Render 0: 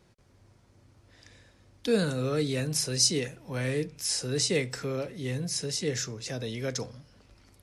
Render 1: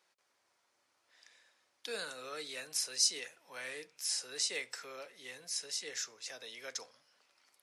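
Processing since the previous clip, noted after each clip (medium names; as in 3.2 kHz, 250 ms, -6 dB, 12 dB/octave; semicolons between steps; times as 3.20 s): high-pass 870 Hz 12 dB/octave; trim -5.5 dB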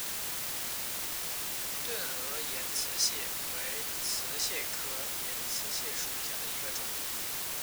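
word length cut 6-bit, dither triangular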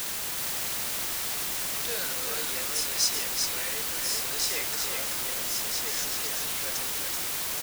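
delay 381 ms -4.5 dB; trim +3.5 dB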